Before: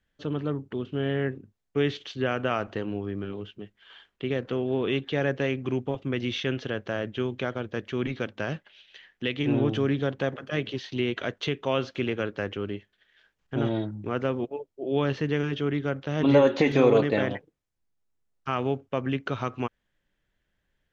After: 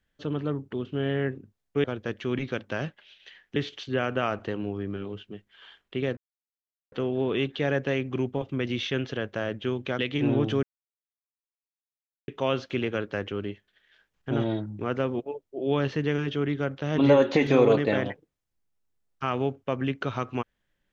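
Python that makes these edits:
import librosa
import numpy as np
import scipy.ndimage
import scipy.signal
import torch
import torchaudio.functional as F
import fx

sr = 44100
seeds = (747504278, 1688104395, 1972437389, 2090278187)

y = fx.edit(x, sr, fx.insert_silence(at_s=4.45, length_s=0.75),
    fx.move(start_s=7.52, length_s=1.72, to_s=1.84),
    fx.silence(start_s=9.88, length_s=1.65), tone=tone)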